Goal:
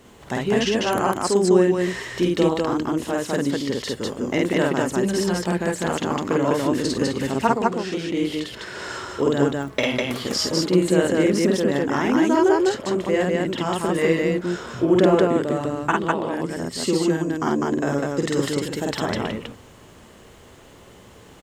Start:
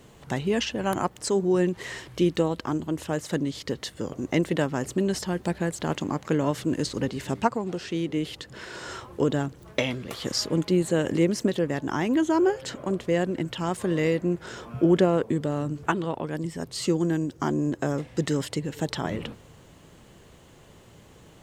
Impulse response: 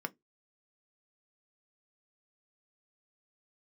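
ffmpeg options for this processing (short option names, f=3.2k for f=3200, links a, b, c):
-filter_complex "[0:a]aecho=1:1:49.56|201.2:0.891|0.891,asplit=2[a][b];[1:a]atrim=start_sample=2205[c];[b][c]afir=irnorm=-1:irlink=0,volume=-10dB[d];[a][d]amix=inputs=2:normalize=0"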